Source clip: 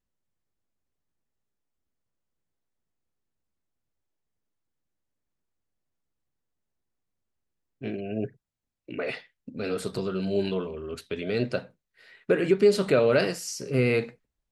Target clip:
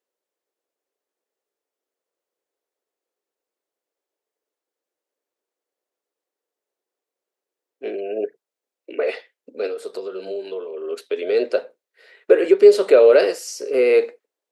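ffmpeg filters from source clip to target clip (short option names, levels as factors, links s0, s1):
-filter_complex "[0:a]highpass=f=350:w=0.5412,highpass=f=350:w=1.3066,equalizer=f=470:t=o:w=1:g=9.5,asettb=1/sr,asplit=3[s0][s1][s2];[s0]atrim=end=9.664[s3];[s1]atrim=start=9.66:end=10.81,asetpts=PTS-STARTPTS,afade=t=in:d=0.004:c=qsin,afade=t=out:st=1.146:d=0.004:c=qsin,acompressor=threshold=0.0355:ratio=6[s4];[s2]atrim=start=10.806[s5];[s3][s4]acrossfade=d=0.004:c1=hsin:c2=qsin[s6];[s6][s5]acrossfade=d=0.004:c1=qsin:c2=hsin,volume=1.33"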